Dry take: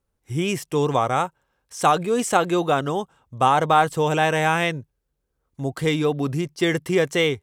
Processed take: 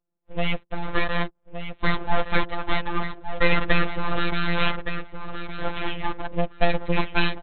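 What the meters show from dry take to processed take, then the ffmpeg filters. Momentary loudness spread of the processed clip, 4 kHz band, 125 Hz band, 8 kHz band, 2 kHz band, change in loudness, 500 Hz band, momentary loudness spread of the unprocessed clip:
10 LU, -1.5 dB, -4.0 dB, under -40 dB, 0.0 dB, -5.0 dB, -7.5 dB, 11 LU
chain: -filter_complex "[0:a]afftfilt=real='re*pow(10,19/40*sin(2*PI*(1.1*log(max(b,1)*sr/1024/100)/log(2)-(-0.35)*(pts-256)/sr)))':imag='im*pow(10,19/40*sin(2*PI*(1.1*log(max(b,1)*sr/1024/100)/log(2)-(-0.35)*(pts-256)/sr)))':win_size=1024:overlap=0.75,adynamicsmooth=sensitivity=3.5:basefreq=600,asplit=2[a][b];[b]adelay=1167,lowpass=f=3.1k:p=1,volume=-8.5dB,asplit=2[c][d];[d]adelay=1167,lowpass=f=3.1k:p=1,volume=0.16[e];[a][c][e]amix=inputs=3:normalize=0,aresample=8000,aeval=exprs='abs(val(0))':c=same,aresample=44100,afftfilt=real='hypot(re,im)*cos(PI*b)':imag='0':win_size=1024:overlap=0.75,volume=-1dB"

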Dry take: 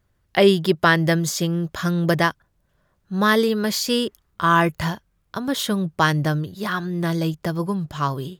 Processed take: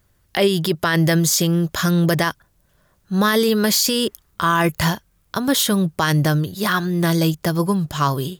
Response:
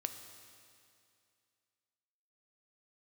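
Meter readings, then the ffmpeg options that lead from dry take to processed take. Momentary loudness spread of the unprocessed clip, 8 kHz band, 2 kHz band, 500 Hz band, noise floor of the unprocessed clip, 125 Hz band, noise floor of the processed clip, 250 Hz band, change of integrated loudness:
9 LU, +8.5 dB, 0.0 dB, +0.5 dB, -68 dBFS, +4.0 dB, -62 dBFS, +3.0 dB, +2.5 dB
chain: -af "highshelf=f=5k:g=10,alimiter=limit=-13dB:level=0:latency=1:release=39,volume=5dB"

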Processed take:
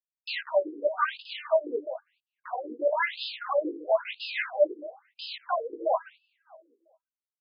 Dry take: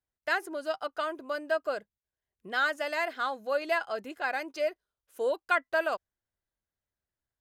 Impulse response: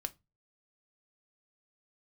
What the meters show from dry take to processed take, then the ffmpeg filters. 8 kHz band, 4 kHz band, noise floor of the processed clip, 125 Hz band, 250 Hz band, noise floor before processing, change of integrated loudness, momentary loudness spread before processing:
under -25 dB, +3.5 dB, under -85 dBFS, n/a, +2.0 dB, under -85 dBFS, +1.5 dB, 7 LU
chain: -filter_complex "[0:a]alimiter=level_in=1dB:limit=-24dB:level=0:latency=1:release=68,volume=-1dB,aresample=16000,acrusher=bits=6:mix=0:aa=0.000001,aresample=44100,asplit=2[a][b];[b]adelay=17,volume=-3dB[c];[a][c]amix=inputs=2:normalize=0,asplit=2[d][e];[e]adelay=199,lowpass=f=880:p=1,volume=-10dB,asplit=2[f][g];[g]adelay=199,lowpass=f=880:p=1,volume=0.55,asplit=2[h][i];[i]adelay=199,lowpass=f=880:p=1,volume=0.55,asplit=2[j][k];[k]adelay=199,lowpass=f=880:p=1,volume=0.55,asplit=2[l][m];[m]adelay=199,lowpass=f=880:p=1,volume=0.55,asplit=2[n][o];[o]adelay=199,lowpass=f=880:p=1,volume=0.55[p];[d][f][h][j][l][n][p]amix=inputs=7:normalize=0,asplit=2[q][r];[1:a]atrim=start_sample=2205[s];[r][s]afir=irnorm=-1:irlink=0,volume=-9dB[t];[q][t]amix=inputs=2:normalize=0,afftfilt=real='re*between(b*sr/1024,340*pow(3700/340,0.5+0.5*sin(2*PI*1*pts/sr))/1.41,340*pow(3700/340,0.5+0.5*sin(2*PI*1*pts/sr))*1.41)':imag='im*between(b*sr/1024,340*pow(3700/340,0.5+0.5*sin(2*PI*1*pts/sr))/1.41,340*pow(3700/340,0.5+0.5*sin(2*PI*1*pts/sr))*1.41)':win_size=1024:overlap=0.75,volume=8dB"

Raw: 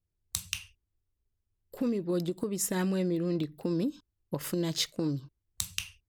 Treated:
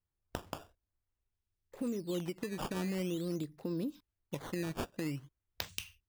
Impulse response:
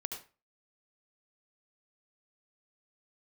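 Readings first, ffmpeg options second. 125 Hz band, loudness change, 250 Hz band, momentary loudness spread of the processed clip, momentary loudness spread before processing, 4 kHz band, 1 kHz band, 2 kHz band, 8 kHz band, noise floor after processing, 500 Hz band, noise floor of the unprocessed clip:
-6.5 dB, -7.0 dB, -6.5 dB, 10 LU, 8 LU, -9.5 dB, -1.5 dB, -4.0 dB, -14.0 dB, under -85 dBFS, -6.5 dB, -84 dBFS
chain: -af "acrusher=samples=12:mix=1:aa=0.000001:lfo=1:lforange=19.2:lforate=0.47,volume=-6.5dB"

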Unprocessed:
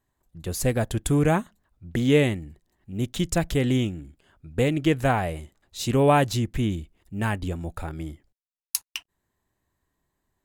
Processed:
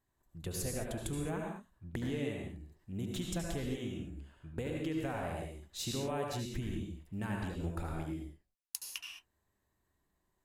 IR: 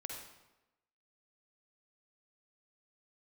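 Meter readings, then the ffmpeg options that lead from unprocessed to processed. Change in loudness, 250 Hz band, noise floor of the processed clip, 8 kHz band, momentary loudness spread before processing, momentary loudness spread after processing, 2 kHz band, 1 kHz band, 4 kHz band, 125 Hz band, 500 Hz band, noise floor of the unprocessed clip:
-14.5 dB, -13.5 dB, -81 dBFS, -9.5 dB, 17 LU, 10 LU, -14.5 dB, -16.5 dB, -10.5 dB, -14.0 dB, -15.0 dB, under -85 dBFS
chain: -filter_complex "[0:a]acompressor=threshold=-30dB:ratio=10[a];[1:a]atrim=start_sample=2205,afade=t=out:st=0.2:d=0.01,atrim=end_sample=9261,asetrate=29547,aresample=44100[b];[a][b]afir=irnorm=-1:irlink=0,volume=-3.5dB"

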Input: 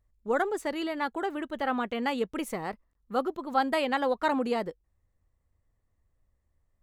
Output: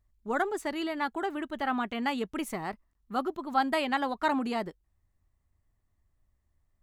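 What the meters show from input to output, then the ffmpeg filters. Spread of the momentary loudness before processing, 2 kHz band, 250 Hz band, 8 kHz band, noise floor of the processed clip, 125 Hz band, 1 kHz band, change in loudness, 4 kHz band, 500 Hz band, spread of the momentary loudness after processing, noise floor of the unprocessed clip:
7 LU, 0.0 dB, -0.5 dB, 0.0 dB, -76 dBFS, 0.0 dB, -0.5 dB, -1.0 dB, 0.0 dB, -4.0 dB, 7 LU, -76 dBFS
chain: -af "equalizer=f=500:t=o:w=0.21:g=-13"

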